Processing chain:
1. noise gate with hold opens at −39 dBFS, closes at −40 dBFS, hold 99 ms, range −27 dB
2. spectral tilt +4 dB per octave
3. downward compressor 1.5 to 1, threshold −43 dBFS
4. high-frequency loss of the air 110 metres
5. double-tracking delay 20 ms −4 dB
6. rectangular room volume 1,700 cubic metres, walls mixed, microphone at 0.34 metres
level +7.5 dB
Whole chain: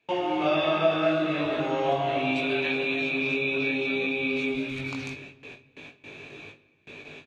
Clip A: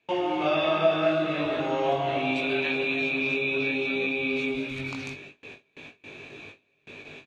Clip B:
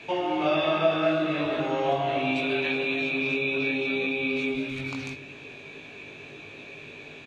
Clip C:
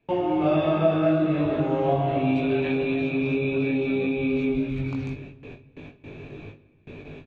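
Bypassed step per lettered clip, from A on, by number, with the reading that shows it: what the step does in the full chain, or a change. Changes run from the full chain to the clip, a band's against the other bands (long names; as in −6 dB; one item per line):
6, echo-to-direct ratio −14.5 dB to none audible
1, change in momentary loudness spread −2 LU
2, 4 kHz band −10.5 dB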